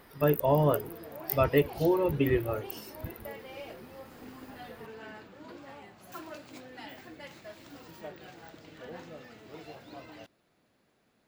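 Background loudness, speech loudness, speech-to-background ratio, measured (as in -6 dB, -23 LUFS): -46.5 LUFS, -27.5 LUFS, 19.0 dB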